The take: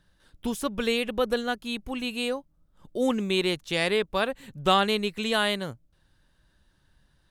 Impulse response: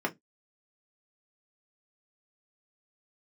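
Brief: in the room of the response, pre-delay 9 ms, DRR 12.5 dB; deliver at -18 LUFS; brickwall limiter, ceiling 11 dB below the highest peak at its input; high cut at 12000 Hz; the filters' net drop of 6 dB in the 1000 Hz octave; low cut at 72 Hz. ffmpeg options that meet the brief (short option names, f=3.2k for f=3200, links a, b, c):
-filter_complex "[0:a]highpass=72,lowpass=12k,equalizer=f=1k:t=o:g=-8.5,alimiter=limit=-20.5dB:level=0:latency=1,asplit=2[a][b];[1:a]atrim=start_sample=2205,adelay=9[c];[b][c]afir=irnorm=-1:irlink=0,volume=-20.5dB[d];[a][d]amix=inputs=2:normalize=0,volume=14.5dB"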